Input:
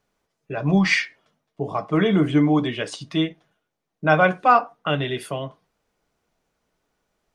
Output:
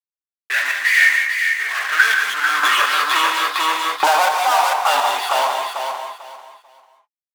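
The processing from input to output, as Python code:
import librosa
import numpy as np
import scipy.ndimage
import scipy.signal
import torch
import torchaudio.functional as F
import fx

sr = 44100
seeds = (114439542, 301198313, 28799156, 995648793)

p1 = scipy.signal.sosfilt(scipy.signal.butter(2, 310.0, 'highpass', fs=sr, output='sos'), x)
p2 = fx.high_shelf_res(p1, sr, hz=5400.0, db=-8.5, q=3.0)
p3 = fx.leveller(p2, sr, passes=2)
p4 = fx.over_compress(p3, sr, threshold_db=-25.0, ratio=-1.0)
p5 = p3 + (p4 * 10.0 ** (0.0 / 20.0))
p6 = fx.fuzz(p5, sr, gain_db=37.0, gate_db=-40.0)
p7 = fx.tremolo_shape(p6, sr, shape='saw_up', hz=1.4, depth_pct=80)
p8 = fx.filter_sweep_highpass(p7, sr, from_hz=1800.0, to_hz=860.0, start_s=1.61, end_s=3.62, q=7.6)
p9 = p8 + fx.echo_feedback(p8, sr, ms=444, feedback_pct=24, wet_db=-5.5, dry=0)
p10 = fx.rev_gated(p9, sr, seeds[0], gate_ms=220, shape='rising', drr_db=4.5)
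p11 = fx.band_squash(p10, sr, depth_pct=100, at=(2.63, 4.74))
y = p11 * 10.0 ** (-4.5 / 20.0)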